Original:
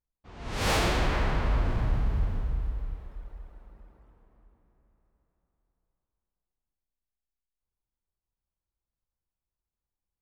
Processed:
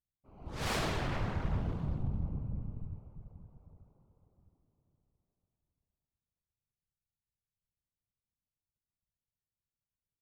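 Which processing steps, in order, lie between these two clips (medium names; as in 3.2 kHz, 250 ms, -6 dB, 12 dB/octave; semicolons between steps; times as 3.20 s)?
local Wiener filter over 25 samples; whisper effect; trim -7.5 dB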